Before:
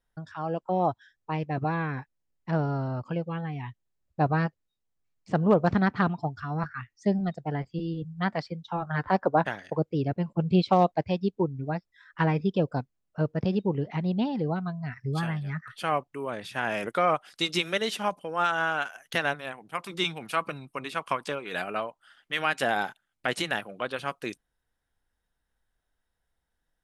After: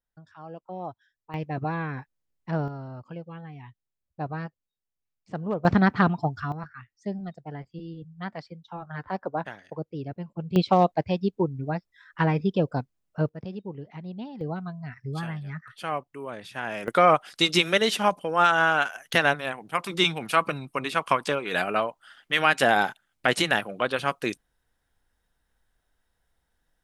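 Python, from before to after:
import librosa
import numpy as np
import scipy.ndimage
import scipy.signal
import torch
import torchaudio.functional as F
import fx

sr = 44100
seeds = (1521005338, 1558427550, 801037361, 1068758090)

y = fx.gain(x, sr, db=fx.steps((0.0, -10.5), (1.34, -1.0), (2.68, -8.0), (5.65, 4.0), (6.52, -7.0), (10.56, 1.5), (13.29, -10.0), (14.41, -3.0), (16.88, 6.0)))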